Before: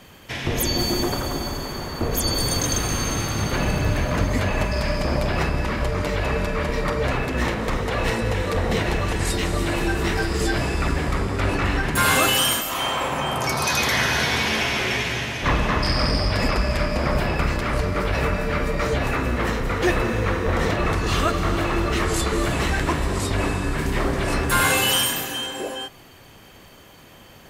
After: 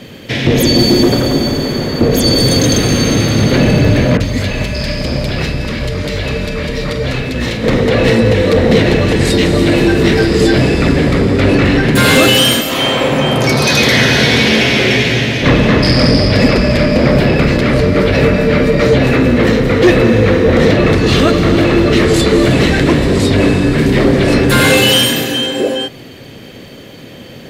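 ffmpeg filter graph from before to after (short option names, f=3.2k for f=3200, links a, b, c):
-filter_complex "[0:a]asettb=1/sr,asplit=3[a][b][c];[a]atrim=end=4.174[d];[b]atrim=start=4.17:end=7.64,asetpts=PTS-STARTPTS,afade=t=in:d=0.004:c=qsin,afade=t=out:st=3.466:d=0.004:c=qsin,equalizer=f=360:w=0.33:g=-11,acrossover=split=1900[e][f];[f]adelay=30[g];[e][g]amix=inputs=2:normalize=0,atrim=end_sample=153027[h];[c]atrim=start=7.636[i];[d][h]acrossfade=d=0.004:c1=hsin:c2=qsin[j];[j][i]acrossfade=d=0.004:c1=qsin:c2=hsin,equalizer=f=125:t=o:w=1:g=10,equalizer=f=250:t=o:w=1:g=11,equalizer=f=500:t=o:w=1:g=11,equalizer=f=1k:t=o:w=1:g=-4,equalizer=f=2k:t=o:w=1:g=6,equalizer=f=4k:t=o:w=1:g=9,acontrast=27,volume=-1dB"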